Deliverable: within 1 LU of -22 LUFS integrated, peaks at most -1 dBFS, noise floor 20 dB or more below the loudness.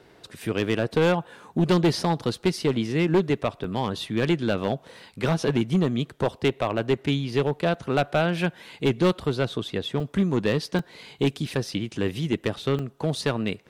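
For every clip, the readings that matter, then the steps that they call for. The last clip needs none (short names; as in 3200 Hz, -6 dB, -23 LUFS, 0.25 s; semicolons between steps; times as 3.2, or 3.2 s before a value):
clipped 1.8%; flat tops at -15.0 dBFS; dropouts 5; longest dropout 2.5 ms; loudness -25.5 LUFS; peak -15.0 dBFS; loudness target -22.0 LUFS
-> clip repair -15 dBFS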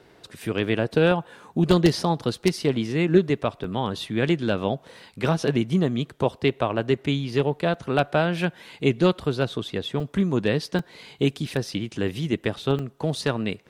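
clipped 0.0%; dropouts 5; longest dropout 2.5 ms
-> interpolate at 3.64/7.74/10/10.79/12.79, 2.5 ms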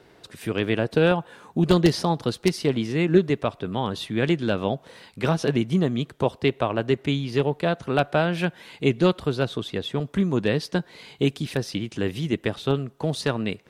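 dropouts 0; loudness -24.5 LUFS; peak -6.0 dBFS; loudness target -22.0 LUFS
-> gain +2.5 dB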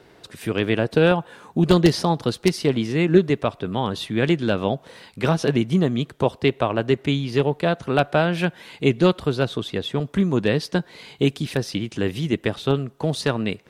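loudness -22.0 LUFS; peak -3.5 dBFS; noise floor -52 dBFS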